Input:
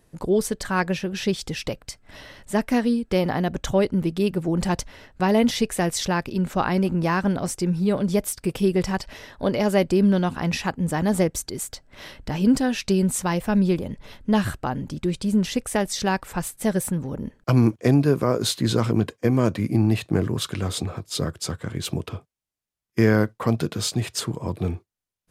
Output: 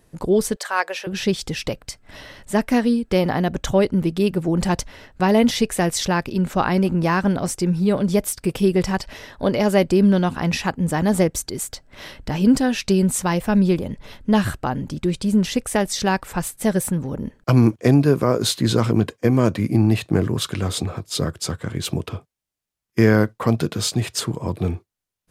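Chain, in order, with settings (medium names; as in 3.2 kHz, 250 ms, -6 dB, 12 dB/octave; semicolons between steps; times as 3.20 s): 0.56–1.07 s: high-pass 500 Hz 24 dB/octave; trim +3 dB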